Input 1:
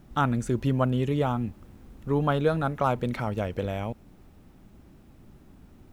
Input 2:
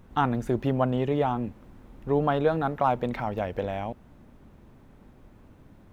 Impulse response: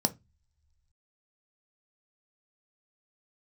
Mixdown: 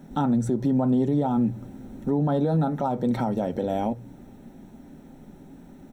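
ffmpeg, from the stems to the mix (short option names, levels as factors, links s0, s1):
-filter_complex "[0:a]aecho=1:1:7.4:0.44,volume=0.944,asplit=2[s0][s1];[s1]volume=0.335[s2];[1:a]volume=0.501,asplit=3[s3][s4][s5];[s4]volume=0.473[s6];[s5]apad=whole_len=261728[s7];[s0][s7]sidechaincompress=threshold=0.0224:ratio=8:attack=45:release=332[s8];[2:a]atrim=start_sample=2205[s9];[s2][s6]amix=inputs=2:normalize=0[s10];[s10][s9]afir=irnorm=-1:irlink=0[s11];[s8][s3][s11]amix=inputs=3:normalize=0,alimiter=limit=0.168:level=0:latency=1:release=183"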